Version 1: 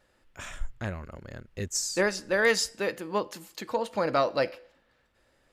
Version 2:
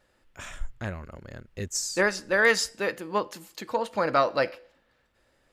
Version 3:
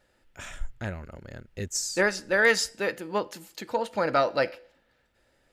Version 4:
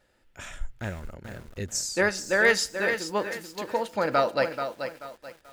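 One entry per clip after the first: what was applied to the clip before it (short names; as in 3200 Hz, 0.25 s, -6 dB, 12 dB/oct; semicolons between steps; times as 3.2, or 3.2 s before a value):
dynamic EQ 1400 Hz, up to +5 dB, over -37 dBFS, Q 0.96
notch 1100 Hz, Q 7.3
lo-fi delay 0.434 s, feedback 35%, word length 8-bit, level -8 dB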